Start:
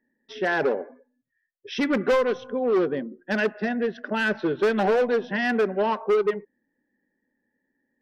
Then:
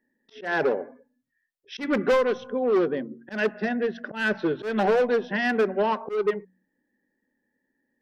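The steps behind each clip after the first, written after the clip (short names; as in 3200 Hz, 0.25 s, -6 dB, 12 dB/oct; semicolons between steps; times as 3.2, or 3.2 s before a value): de-hum 46.33 Hz, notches 6; auto swell 0.139 s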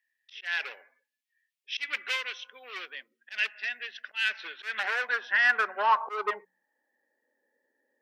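high-pass sweep 2500 Hz -> 520 Hz, 4.23–7.44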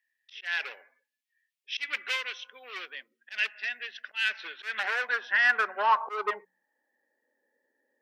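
nothing audible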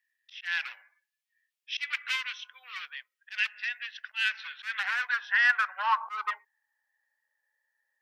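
HPF 970 Hz 24 dB/oct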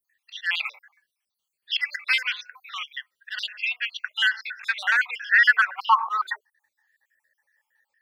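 random spectral dropouts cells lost 59%; in parallel at -0.5 dB: limiter -23 dBFS, peak gain reduction 10.5 dB; on the sum: gain +5 dB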